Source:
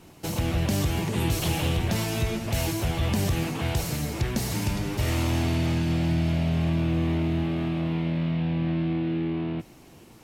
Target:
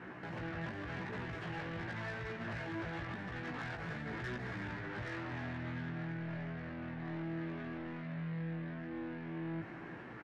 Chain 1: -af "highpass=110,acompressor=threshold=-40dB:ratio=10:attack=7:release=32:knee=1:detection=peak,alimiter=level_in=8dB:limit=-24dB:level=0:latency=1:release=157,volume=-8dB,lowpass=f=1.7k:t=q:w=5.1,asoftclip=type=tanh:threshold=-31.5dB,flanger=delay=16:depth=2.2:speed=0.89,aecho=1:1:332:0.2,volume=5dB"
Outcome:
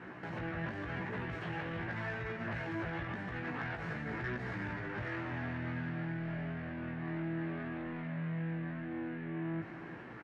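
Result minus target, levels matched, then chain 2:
soft clip: distortion -10 dB
-af "highpass=110,acompressor=threshold=-40dB:ratio=10:attack=7:release=32:knee=1:detection=peak,alimiter=level_in=8dB:limit=-24dB:level=0:latency=1:release=157,volume=-8dB,lowpass=f=1.7k:t=q:w=5.1,asoftclip=type=tanh:threshold=-39.5dB,flanger=delay=16:depth=2.2:speed=0.89,aecho=1:1:332:0.2,volume=5dB"

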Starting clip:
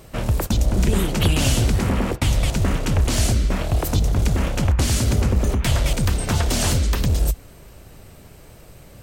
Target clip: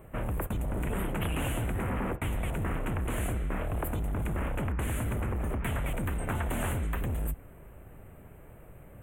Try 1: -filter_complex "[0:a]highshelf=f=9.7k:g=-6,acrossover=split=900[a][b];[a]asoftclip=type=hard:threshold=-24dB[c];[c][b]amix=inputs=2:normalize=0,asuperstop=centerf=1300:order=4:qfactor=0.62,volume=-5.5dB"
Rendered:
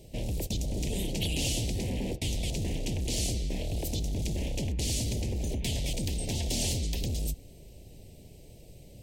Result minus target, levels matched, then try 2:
1000 Hz band -12.0 dB
-filter_complex "[0:a]highshelf=f=9.7k:g=-6,acrossover=split=900[a][b];[a]asoftclip=type=hard:threshold=-24dB[c];[c][b]amix=inputs=2:normalize=0,asuperstop=centerf=5000:order=4:qfactor=0.62,volume=-5.5dB"

